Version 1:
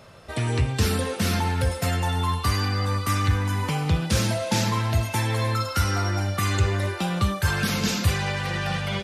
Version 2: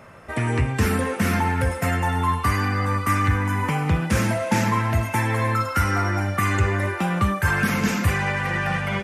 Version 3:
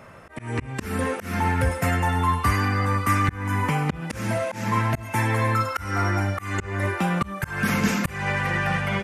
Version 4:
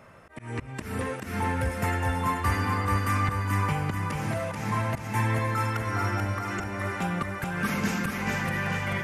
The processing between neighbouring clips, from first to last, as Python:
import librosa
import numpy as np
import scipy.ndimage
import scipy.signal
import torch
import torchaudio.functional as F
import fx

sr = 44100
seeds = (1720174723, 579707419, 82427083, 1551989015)

y1 = fx.graphic_eq(x, sr, hz=(250, 1000, 2000, 4000), db=(5, 4, 8, -11))
y2 = fx.auto_swell(y1, sr, attack_ms=254.0)
y3 = fx.echo_feedback(y2, sr, ms=435, feedback_pct=49, wet_db=-4.0)
y3 = y3 * 10.0 ** (-6.0 / 20.0)